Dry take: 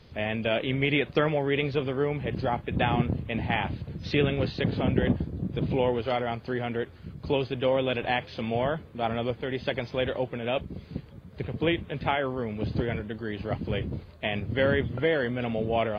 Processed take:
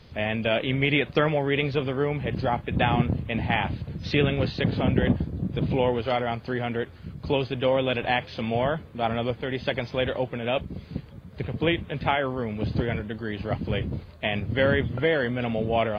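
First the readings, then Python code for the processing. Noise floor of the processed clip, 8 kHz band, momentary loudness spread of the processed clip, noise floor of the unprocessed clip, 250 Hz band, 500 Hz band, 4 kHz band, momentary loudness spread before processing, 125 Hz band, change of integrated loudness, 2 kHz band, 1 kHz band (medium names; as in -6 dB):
-46 dBFS, no reading, 8 LU, -48 dBFS, +2.0 dB, +1.5 dB, +3.0 dB, 8 LU, +3.0 dB, +2.0 dB, +3.0 dB, +2.5 dB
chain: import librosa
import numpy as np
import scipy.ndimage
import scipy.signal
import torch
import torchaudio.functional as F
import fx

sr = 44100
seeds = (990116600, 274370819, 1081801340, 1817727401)

y = fx.peak_eq(x, sr, hz=380.0, db=-2.5, octaves=0.8)
y = y * librosa.db_to_amplitude(3.0)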